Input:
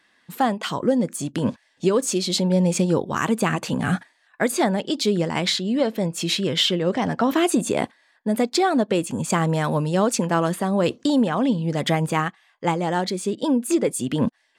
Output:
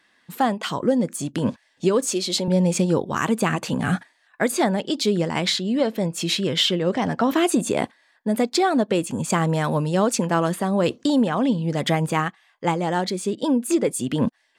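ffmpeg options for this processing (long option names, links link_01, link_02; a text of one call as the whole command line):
ffmpeg -i in.wav -filter_complex "[0:a]asettb=1/sr,asplit=3[link_01][link_02][link_03];[link_01]atrim=end=2.054[link_04];[link_02]atrim=start=2.05:end=2.48,asetpts=PTS-STARTPTS,afade=type=in:duration=0.004:curve=qsin,afade=type=out:start_time=0.426:duration=0.004:curve=qsin,highpass=250[link_05];[link_03]atrim=start=2.476[link_06];[link_04][link_05]acrossfade=duration=0.004:curve1=hsin:curve2=qsin[link_07];[link_07][link_06]acrossfade=duration=0.004:curve1=qsin:curve2=hsin" out.wav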